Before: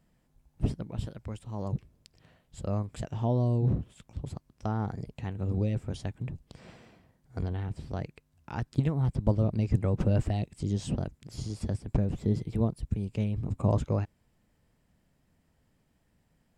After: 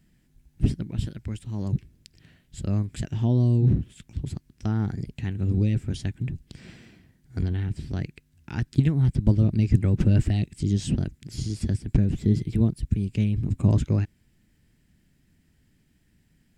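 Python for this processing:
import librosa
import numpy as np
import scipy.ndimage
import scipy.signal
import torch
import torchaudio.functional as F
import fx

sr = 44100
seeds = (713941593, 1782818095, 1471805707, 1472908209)

y = fx.band_shelf(x, sr, hz=760.0, db=-11.5, octaves=1.7)
y = y * librosa.db_to_amplitude(6.5)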